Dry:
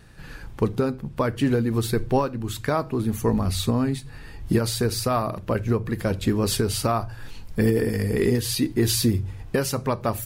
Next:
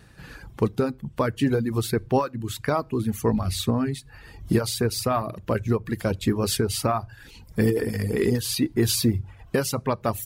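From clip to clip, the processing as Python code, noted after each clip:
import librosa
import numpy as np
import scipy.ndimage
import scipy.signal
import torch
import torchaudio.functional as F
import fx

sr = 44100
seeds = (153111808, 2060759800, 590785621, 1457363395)

y = fx.dereverb_blind(x, sr, rt60_s=0.64)
y = scipy.signal.sosfilt(scipy.signal.butter(2, 46.0, 'highpass', fs=sr, output='sos'), y)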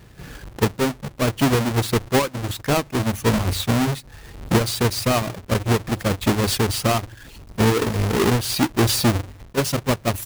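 y = fx.halfwave_hold(x, sr)
y = fx.attack_slew(y, sr, db_per_s=550.0)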